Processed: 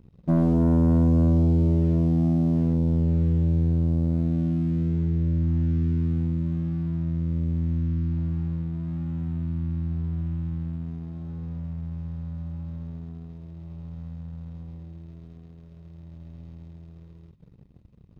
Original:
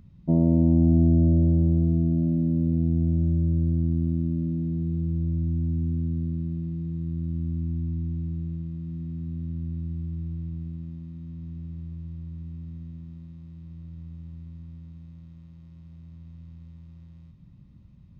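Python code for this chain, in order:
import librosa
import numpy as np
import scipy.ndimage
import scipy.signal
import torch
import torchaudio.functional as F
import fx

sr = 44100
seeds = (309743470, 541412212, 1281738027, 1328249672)

y = fx.leveller(x, sr, passes=2)
y = y * librosa.db_to_amplitude(-4.0)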